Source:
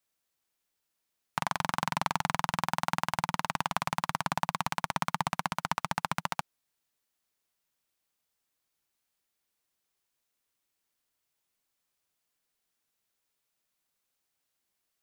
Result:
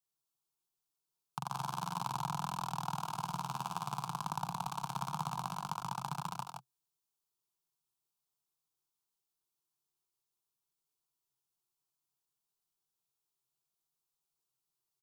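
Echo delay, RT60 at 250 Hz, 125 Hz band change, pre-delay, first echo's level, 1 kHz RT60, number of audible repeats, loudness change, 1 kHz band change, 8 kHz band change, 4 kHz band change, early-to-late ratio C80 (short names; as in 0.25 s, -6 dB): 76 ms, none, -2.5 dB, none, -14.5 dB, none, 2, -7.0 dB, -6.0 dB, -6.0 dB, -9.0 dB, none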